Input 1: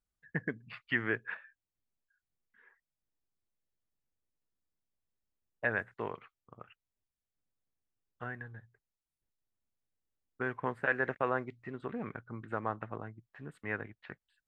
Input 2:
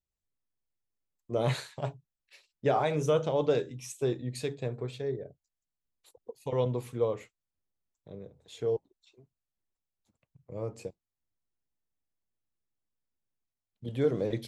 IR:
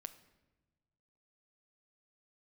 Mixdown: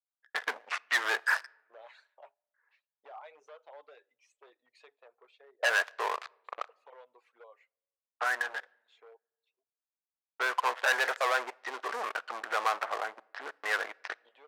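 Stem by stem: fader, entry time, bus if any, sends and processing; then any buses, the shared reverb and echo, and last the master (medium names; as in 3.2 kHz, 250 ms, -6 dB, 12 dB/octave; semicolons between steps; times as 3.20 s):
+2.0 dB, 0.00 s, send -6.5 dB, low-pass 1.5 kHz 12 dB/octave; waveshaping leveller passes 5; peak limiter -23 dBFS, peak gain reduction 5.5 dB
-9.5 dB, 0.40 s, send -14.5 dB, reverb removal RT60 1.1 s; compression 4:1, threshold -32 dBFS, peak gain reduction 9.5 dB; hard clipper -30 dBFS, distortion -16 dB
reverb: on, pre-delay 7 ms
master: level-controlled noise filter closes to 1.9 kHz, open at -24 dBFS; high-pass 650 Hz 24 dB/octave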